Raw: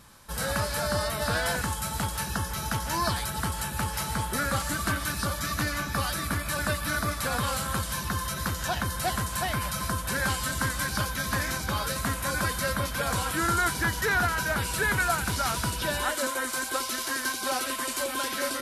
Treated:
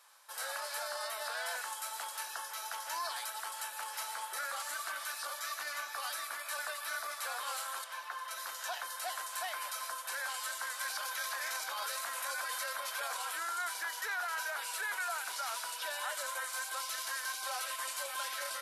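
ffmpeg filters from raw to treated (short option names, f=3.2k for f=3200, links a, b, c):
-filter_complex "[0:a]asettb=1/sr,asplit=3[a][b][c];[a]atrim=end=7.844[d];[b]atrim=start=7.84:end=8.31,asetpts=PTS-STARTPTS,afade=t=in:d=0.004:c=qsin,afade=t=out:st=0.466:d=0.004:c=qsin,bass=f=250:g=-14,treble=f=4k:g=-12[e];[c]atrim=start=8.306[f];[d][e]acrossfade=d=0.004:c1=hsin:c2=qsin[g];[g][f]acrossfade=d=0.004:c1=qsin:c2=hsin,asettb=1/sr,asplit=3[h][i][j];[h]atrim=end=10.814[k];[i]atrim=start=10.81:end=13.22,asetpts=PTS-STARTPTS,afade=t=in:d=0.004:c=qsin,afade=t=out:st=2.406:d=0.004:c=qsin,acontrast=33[l];[j]atrim=start=13.216[m];[k][l]acrossfade=d=0.004:c1=hsin:c2=qsin[n];[n][m]acrossfade=d=0.004:c1=qsin:c2=hsin,alimiter=limit=-20.5dB:level=0:latency=1:release=15,highpass=f=640:w=0.5412,highpass=f=640:w=1.3066,volume=-7dB"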